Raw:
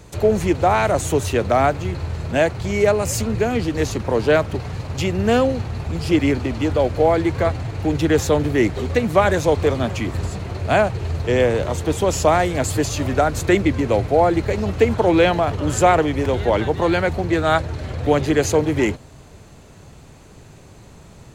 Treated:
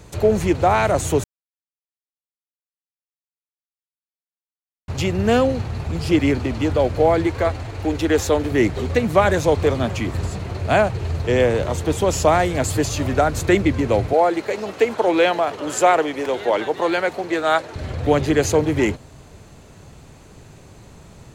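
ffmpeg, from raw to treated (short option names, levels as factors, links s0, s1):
-filter_complex "[0:a]asettb=1/sr,asplit=3[s0][s1][s2];[s0]atrim=end=7.274[s3];[s1]atrim=start=7.27:end=8.52,asetpts=PTS-STARTPTS,afade=t=in:d=0.004:c=qsin,afade=t=out:st=1.246:d=0.004:c=qsin,equalizer=f=150:t=o:w=0.72:g=-12[s4];[s2]atrim=start=8.516[s5];[s3][s4]acrossfade=d=0.004:c1=hsin:c2=qsin[s6];[s6][s5]acrossfade=d=0.004:c1=qsin:c2=hsin,asettb=1/sr,asplit=3[s7][s8][s9];[s7]atrim=end=14.134[s10];[s8]atrim=start=14.13:end=17.76,asetpts=PTS-STARTPTS,afade=t=in:d=0.004:c=qsin,afade=t=out:st=3.626:d=0.004:c=qsin,highpass=350[s11];[s9]atrim=start=17.756[s12];[s10][s11]acrossfade=d=0.004:c1=hsin:c2=qsin[s13];[s13][s12]acrossfade=d=0.004:c1=qsin:c2=hsin,asplit=3[s14][s15][s16];[s14]atrim=end=1.24,asetpts=PTS-STARTPTS,afade=t=out:st=1.236:d=0.004:c=hsin[s17];[s15]atrim=start=1.24:end=4.88,asetpts=PTS-STARTPTS,volume=0[s18];[s16]atrim=start=4.88,asetpts=PTS-STARTPTS,afade=t=in:d=0.004:c=hsin[s19];[s17][s18][s19]concat=n=3:v=0:a=1"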